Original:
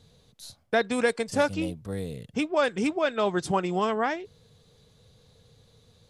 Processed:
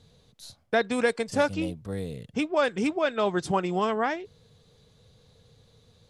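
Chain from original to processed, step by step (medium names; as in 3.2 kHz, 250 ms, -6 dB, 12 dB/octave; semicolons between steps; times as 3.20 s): treble shelf 10 kHz -6 dB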